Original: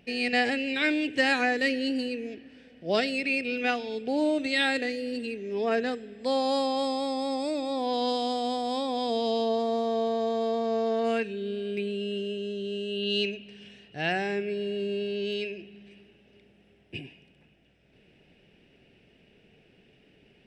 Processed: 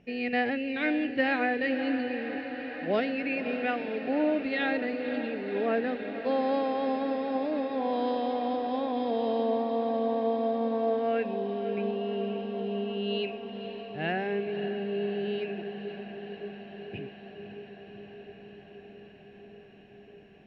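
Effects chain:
high-frequency loss of the air 450 metres
feedback delay with all-pass diffusion 544 ms, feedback 80%, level −10.5 dB
MP2 96 kbit/s 22,050 Hz

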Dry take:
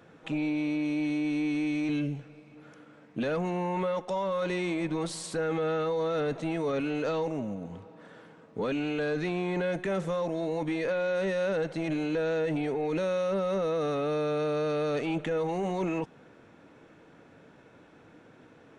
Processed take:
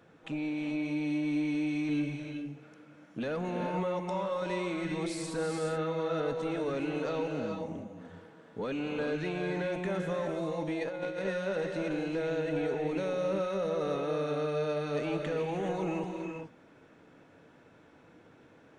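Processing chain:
reverb whose tail is shaped and stops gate 450 ms rising, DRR 3 dB
0:10.81–0:11.25: compressor whose output falls as the input rises −30 dBFS, ratio −0.5
level −4.5 dB

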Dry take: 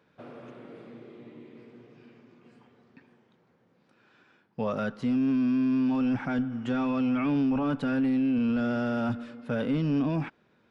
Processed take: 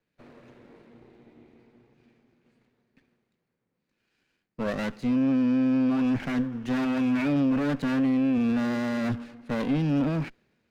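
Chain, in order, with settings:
lower of the sound and its delayed copy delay 0.46 ms
multiband upward and downward expander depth 40%
level +2 dB

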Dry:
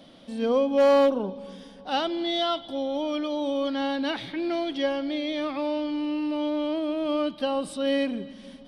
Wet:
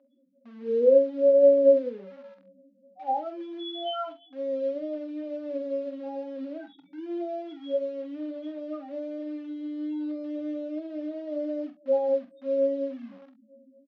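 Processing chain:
comb filter 3.9 ms, depth 33%
spectral peaks only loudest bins 4
dynamic equaliser 1,800 Hz, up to +4 dB, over −53 dBFS, Q 3.6
phase-vocoder stretch with locked phases 1.6×
in parallel at −12 dB: bit reduction 6 bits
on the sum: band-pass filter 420–6,700 Hz
high-frequency loss of the air 260 metres
on a send: ambience of single reflections 26 ms −15 dB, 46 ms −9.5 dB, 67 ms −16.5 dB
on the sum: expander for the loud parts 1.5 to 1, over −33 dBFS
level +3.5 dB

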